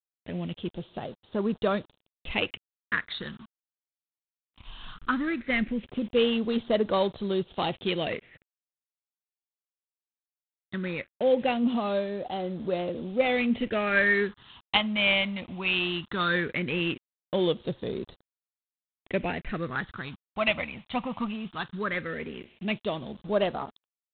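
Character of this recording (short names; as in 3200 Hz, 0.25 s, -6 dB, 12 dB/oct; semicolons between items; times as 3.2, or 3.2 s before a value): a quantiser's noise floor 8-bit, dither none; phasing stages 6, 0.18 Hz, lowest notch 420–2200 Hz; G.726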